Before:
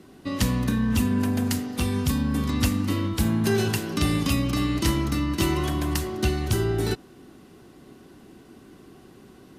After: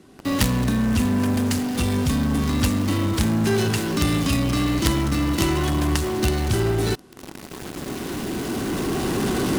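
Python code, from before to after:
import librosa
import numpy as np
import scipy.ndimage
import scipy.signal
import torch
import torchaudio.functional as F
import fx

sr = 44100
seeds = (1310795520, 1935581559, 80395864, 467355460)

p1 = fx.cvsd(x, sr, bps=64000)
p2 = fx.recorder_agc(p1, sr, target_db=-15.0, rise_db_per_s=10.0, max_gain_db=30)
p3 = fx.quant_companded(p2, sr, bits=2)
p4 = p2 + F.gain(torch.from_numpy(p3), -3.0).numpy()
y = F.gain(torch.from_numpy(p4), -1.0).numpy()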